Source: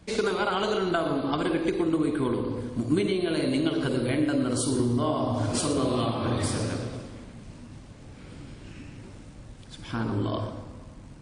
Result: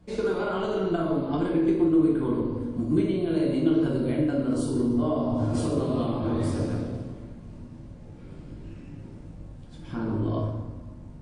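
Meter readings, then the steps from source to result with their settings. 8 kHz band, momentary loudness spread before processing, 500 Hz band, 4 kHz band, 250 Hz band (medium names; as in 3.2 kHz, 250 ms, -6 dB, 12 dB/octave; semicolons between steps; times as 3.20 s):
-11.0 dB, 20 LU, +0.5 dB, -9.5 dB, +2.5 dB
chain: tilt shelf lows +6 dB, about 1.1 kHz; simulated room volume 100 m³, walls mixed, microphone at 0.89 m; trim -8 dB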